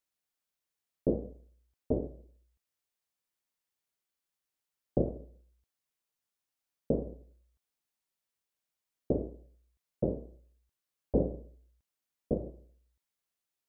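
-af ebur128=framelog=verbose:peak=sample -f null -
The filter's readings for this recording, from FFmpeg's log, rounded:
Integrated loudness:
  I:         -35.1 LUFS
  Threshold: -46.9 LUFS
Loudness range:
  LRA:         5.5 LU
  Threshold: -60.5 LUFS
  LRA low:   -43.3 LUFS
  LRA high:  -37.8 LUFS
Sample peak:
  Peak:      -15.3 dBFS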